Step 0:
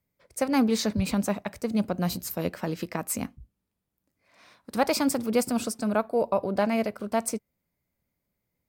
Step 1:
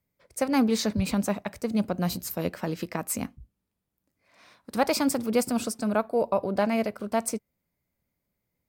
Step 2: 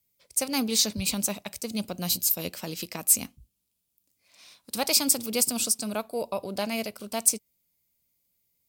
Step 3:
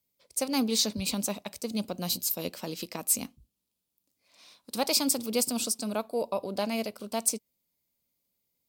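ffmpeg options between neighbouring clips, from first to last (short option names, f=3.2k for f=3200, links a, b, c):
-af anull
-af "aexciter=amount=4.8:drive=5.6:freq=2.5k,volume=-6dB"
-af "equalizer=f=250:t=o:w=1:g=6,equalizer=f=500:t=o:w=1:g=5,equalizer=f=1k:t=o:w=1:g=5,equalizer=f=4k:t=o:w=1:g=4,volume=-6dB"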